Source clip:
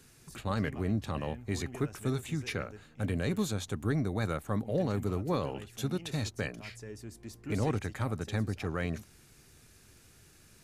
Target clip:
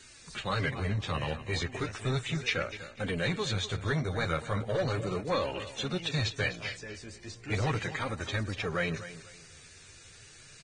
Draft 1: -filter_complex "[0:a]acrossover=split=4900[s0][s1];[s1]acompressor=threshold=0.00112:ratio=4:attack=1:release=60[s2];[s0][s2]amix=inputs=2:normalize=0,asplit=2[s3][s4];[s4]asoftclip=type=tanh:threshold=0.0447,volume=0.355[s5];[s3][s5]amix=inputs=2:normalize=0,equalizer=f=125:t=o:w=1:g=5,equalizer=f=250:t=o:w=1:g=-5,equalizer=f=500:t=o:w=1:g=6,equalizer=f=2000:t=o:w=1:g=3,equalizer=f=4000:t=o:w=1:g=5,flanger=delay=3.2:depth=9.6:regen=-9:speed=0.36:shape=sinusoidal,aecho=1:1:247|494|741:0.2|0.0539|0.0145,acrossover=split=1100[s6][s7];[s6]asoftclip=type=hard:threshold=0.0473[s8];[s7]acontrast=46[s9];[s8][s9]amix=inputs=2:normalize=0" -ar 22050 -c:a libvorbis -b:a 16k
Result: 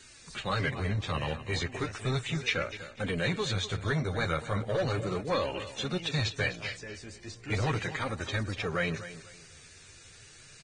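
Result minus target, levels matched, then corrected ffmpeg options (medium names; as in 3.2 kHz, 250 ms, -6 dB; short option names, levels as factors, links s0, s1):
saturation: distortion -6 dB
-filter_complex "[0:a]acrossover=split=4900[s0][s1];[s1]acompressor=threshold=0.00112:ratio=4:attack=1:release=60[s2];[s0][s2]amix=inputs=2:normalize=0,asplit=2[s3][s4];[s4]asoftclip=type=tanh:threshold=0.0188,volume=0.355[s5];[s3][s5]amix=inputs=2:normalize=0,equalizer=f=125:t=o:w=1:g=5,equalizer=f=250:t=o:w=1:g=-5,equalizer=f=500:t=o:w=1:g=6,equalizer=f=2000:t=o:w=1:g=3,equalizer=f=4000:t=o:w=1:g=5,flanger=delay=3.2:depth=9.6:regen=-9:speed=0.36:shape=sinusoidal,aecho=1:1:247|494|741:0.2|0.0539|0.0145,acrossover=split=1100[s6][s7];[s6]asoftclip=type=hard:threshold=0.0473[s8];[s7]acontrast=46[s9];[s8][s9]amix=inputs=2:normalize=0" -ar 22050 -c:a libvorbis -b:a 16k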